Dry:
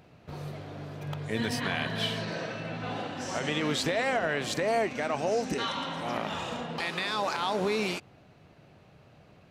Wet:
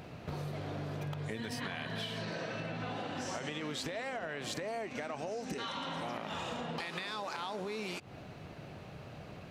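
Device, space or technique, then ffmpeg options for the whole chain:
serial compression, peaks first: -af "acompressor=threshold=-39dB:ratio=6,acompressor=threshold=-46dB:ratio=2.5,volume=8dB"

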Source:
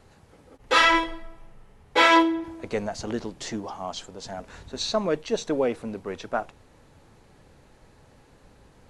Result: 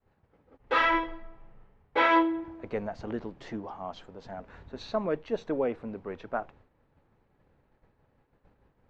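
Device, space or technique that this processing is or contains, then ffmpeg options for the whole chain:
hearing-loss simulation: -af "lowpass=2.2k,agate=range=-33dB:threshold=-47dB:ratio=3:detection=peak,volume=-4.5dB"

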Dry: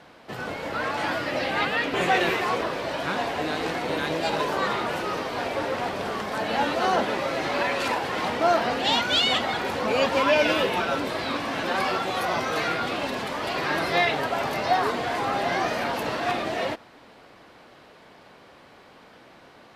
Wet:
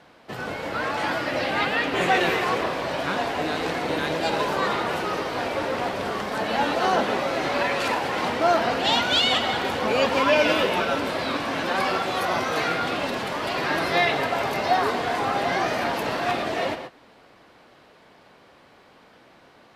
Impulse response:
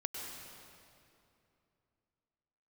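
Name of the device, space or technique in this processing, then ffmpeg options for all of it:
keyed gated reverb: -filter_complex "[0:a]asplit=3[a][b][c];[1:a]atrim=start_sample=2205[d];[b][d]afir=irnorm=-1:irlink=0[e];[c]apad=whole_len=871021[f];[e][f]sidechaingate=range=-33dB:threshold=-43dB:ratio=16:detection=peak,volume=-4dB[g];[a][g]amix=inputs=2:normalize=0,volume=-2.5dB"

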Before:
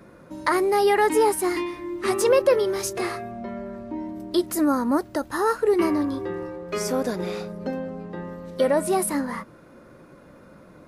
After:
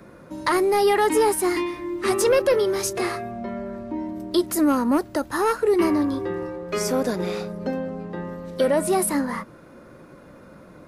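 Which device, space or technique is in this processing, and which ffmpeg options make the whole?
one-band saturation: -filter_complex "[0:a]acrossover=split=270|2800[a][b][c];[b]asoftclip=type=tanh:threshold=-16.5dB[d];[a][d][c]amix=inputs=3:normalize=0,volume=2.5dB"

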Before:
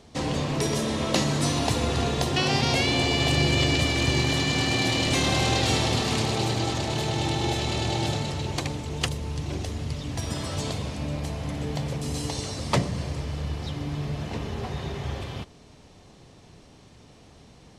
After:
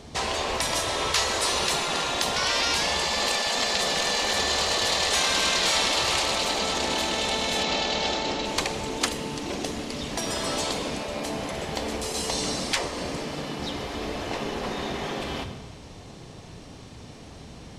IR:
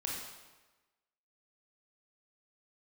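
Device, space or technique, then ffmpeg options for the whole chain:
compressed reverb return: -filter_complex "[0:a]asplit=2[a][b];[1:a]atrim=start_sample=2205[c];[b][c]afir=irnorm=-1:irlink=0,acompressor=threshold=-28dB:ratio=6,volume=-4dB[d];[a][d]amix=inputs=2:normalize=0,asettb=1/sr,asplit=3[e][f][g];[e]atrim=end=7.634[h];[f]atrim=start=7.63:end=8.45,asetpts=PTS-STARTPTS,afade=t=in:d=0.004:c=qsin,afade=t=out:st=0.816:d=0.004:c=qsin,lowpass=f=6.5k:w=0.5412,lowpass=f=6.5k:w=1.3066[i];[g]atrim=start=8.446[j];[h][i]acrossfade=d=0.004:c1=hsin:c2=qsin[k];[k][j]acrossfade=d=0.004:c1=qsin:c2=hsin,afftfilt=real='re*lt(hypot(re,im),0.178)':imag='im*lt(hypot(re,im),0.178)':win_size=1024:overlap=0.75,volume=3.5dB"

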